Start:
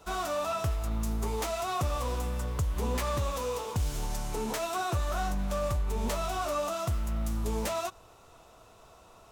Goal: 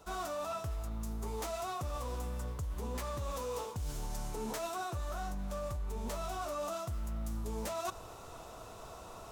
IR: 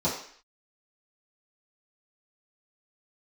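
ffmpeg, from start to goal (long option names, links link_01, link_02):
-af "equalizer=frequency=2600:width=1.1:gain=-3.5,areverse,acompressor=threshold=-43dB:ratio=8,areverse,volume=7dB"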